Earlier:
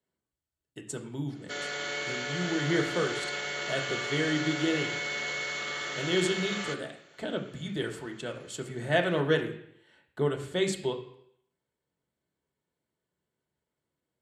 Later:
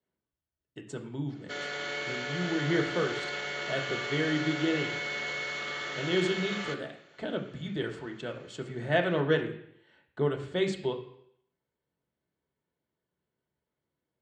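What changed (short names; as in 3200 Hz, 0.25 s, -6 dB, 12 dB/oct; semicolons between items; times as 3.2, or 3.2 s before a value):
background: add high shelf 6400 Hz +4.5 dB; master: add air absorption 120 m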